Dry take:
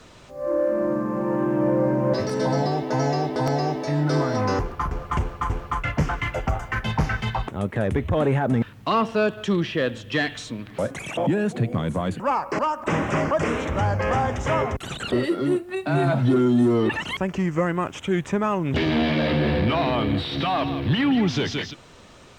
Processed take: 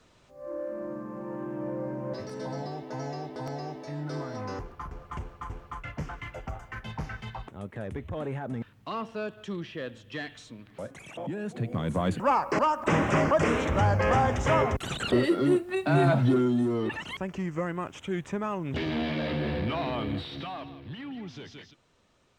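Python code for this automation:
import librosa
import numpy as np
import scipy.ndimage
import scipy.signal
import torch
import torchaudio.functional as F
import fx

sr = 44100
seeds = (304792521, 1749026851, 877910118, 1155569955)

y = fx.gain(x, sr, db=fx.line((11.32, -13.0), (12.07, -1.0), (16.09, -1.0), (16.67, -8.5), (20.17, -8.5), (20.8, -19.0)))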